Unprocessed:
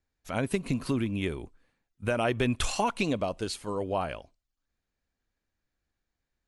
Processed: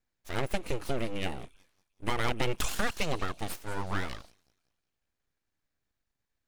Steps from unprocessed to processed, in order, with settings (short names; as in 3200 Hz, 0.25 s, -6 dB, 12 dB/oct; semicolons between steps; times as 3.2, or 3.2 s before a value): thin delay 0.185 s, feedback 39%, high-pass 3500 Hz, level -13 dB; spectral repair 3.7–4.28, 3300–6600 Hz before; full-wave rectifier